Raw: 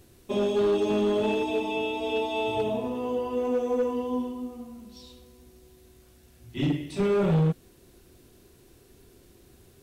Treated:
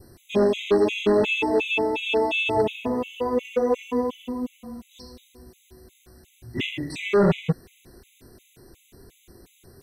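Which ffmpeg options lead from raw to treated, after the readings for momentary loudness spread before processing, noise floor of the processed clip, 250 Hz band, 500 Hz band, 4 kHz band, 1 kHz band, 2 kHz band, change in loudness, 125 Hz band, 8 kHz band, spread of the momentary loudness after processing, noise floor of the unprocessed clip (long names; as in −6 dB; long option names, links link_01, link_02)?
13 LU, −61 dBFS, +2.0 dB, +3.5 dB, +6.5 dB, +4.0 dB, +10.0 dB, +3.5 dB, −1.0 dB, can't be measured, 11 LU, −57 dBFS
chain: -af "adynamicequalizer=threshold=0.00251:dfrequency=2300:dqfactor=1.6:tfrequency=2300:tqfactor=1.6:attack=5:release=100:ratio=0.375:range=4:mode=boostabove:tftype=bell,afftfilt=real='re*gt(sin(2*PI*2.8*pts/sr)*(1-2*mod(floor(b*sr/1024/2000),2)),0)':imag='im*gt(sin(2*PI*2.8*pts/sr)*(1-2*mod(floor(b*sr/1024/2000),2)),0)':win_size=1024:overlap=0.75,volume=6.5dB"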